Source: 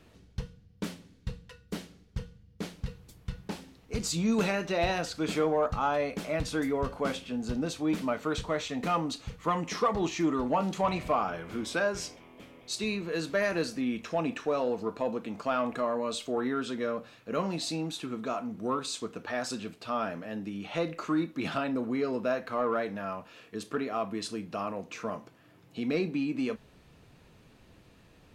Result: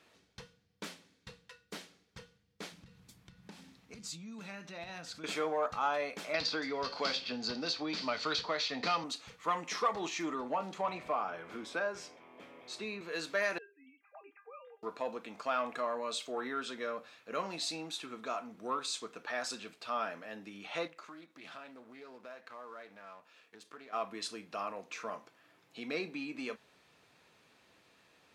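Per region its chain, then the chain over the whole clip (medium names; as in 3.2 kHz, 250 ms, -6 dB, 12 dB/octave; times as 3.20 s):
2.72–5.24 s: resonant low shelf 290 Hz +9.5 dB, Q 1.5 + compression 3:1, threshold -38 dBFS
6.34–9.04 s: low-pass 5.9 kHz 24 dB/octave + peaking EQ 4.6 kHz +14.5 dB 0.39 oct + three bands compressed up and down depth 100%
10.34–13.01 s: treble shelf 2.1 kHz -10.5 dB + three bands compressed up and down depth 40%
13.58–14.83 s: formants replaced by sine waves + bass shelf 280 Hz -9 dB + feedback comb 400 Hz, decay 0.22 s, mix 90%
20.87–23.93 s: companding laws mixed up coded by A + compression 2.5:1, threshold -46 dBFS + loudspeaker Doppler distortion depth 0.14 ms
whole clip: high-pass 1 kHz 6 dB/octave; treble shelf 11 kHz -9 dB; band-stop 2.9 kHz, Q 23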